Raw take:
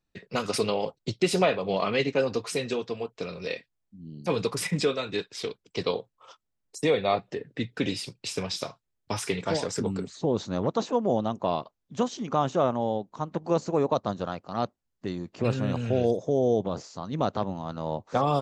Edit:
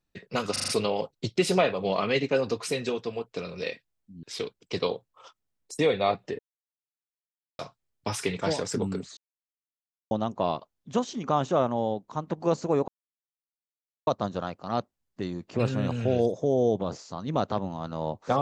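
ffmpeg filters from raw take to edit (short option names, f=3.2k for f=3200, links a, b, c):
-filter_complex "[0:a]asplit=11[a][b][c][d][e][f][g][h][i][j][k];[a]atrim=end=0.562[l];[b]atrim=start=0.518:end=0.562[m];[c]atrim=start=0.518:end=0.562[n];[d]atrim=start=0.518:end=0.562[o];[e]atrim=start=0.518:end=4.072[p];[f]atrim=start=5.268:end=7.43,asetpts=PTS-STARTPTS,afade=t=out:st=2.158:d=0.004:c=hsin[q];[g]atrim=start=7.43:end=8.63,asetpts=PTS-STARTPTS,volume=0[r];[h]atrim=start=8.63:end=10.21,asetpts=PTS-STARTPTS,afade=t=in:d=0.004:c=hsin,afade=t=out:st=1.576:d=0.004:c=hsin[s];[i]atrim=start=10.21:end=11.15,asetpts=PTS-STARTPTS,volume=0[t];[j]atrim=start=11.15:end=13.92,asetpts=PTS-STARTPTS,afade=t=in:d=0.004:c=hsin,afade=t=out:st=2.766:d=0.004:c=hsin,apad=pad_dur=1.19[u];[k]atrim=start=13.92,asetpts=PTS-STARTPTS,afade=t=in:d=0.004:c=hsin[v];[l][m]acrossfade=d=0.004:c1=hsin:c2=hsin[w];[w][n]acrossfade=d=0.004:c1=hsin:c2=hsin[x];[x][o]acrossfade=d=0.004:c1=hsin:c2=hsin[y];[y][p]acrossfade=d=0.004:c1=hsin:c2=hsin[z];[q][r][s][t][u][v]concat=n=6:v=0:a=1[aa];[z][aa]acrossfade=d=0.004:c1=hsin:c2=hsin"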